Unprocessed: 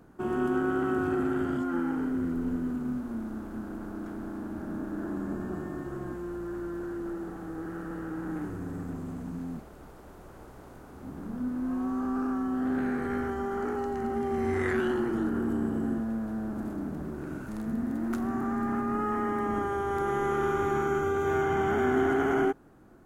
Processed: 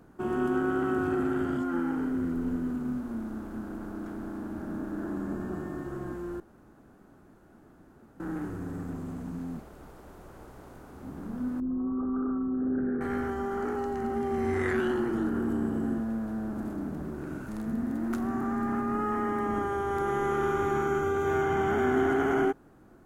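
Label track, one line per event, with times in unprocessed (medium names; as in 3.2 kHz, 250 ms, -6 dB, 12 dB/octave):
6.400000	8.200000	room tone
11.600000	13.010000	resonances exaggerated exponent 2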